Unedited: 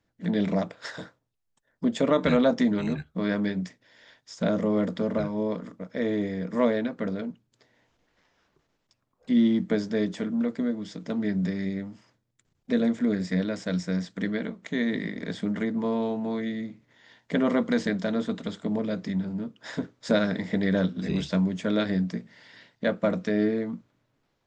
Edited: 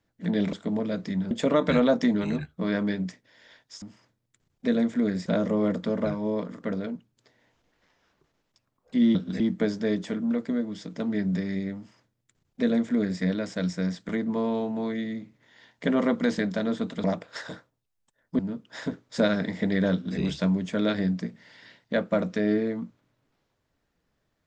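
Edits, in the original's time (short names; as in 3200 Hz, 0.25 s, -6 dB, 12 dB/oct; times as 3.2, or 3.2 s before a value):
0.53–1.88 swap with 18.52–19.3
5.75–6.97 cut
11.87–13.31 copy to 4.39
14.19–15.57 cut
20.84–21.09 copy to 9.5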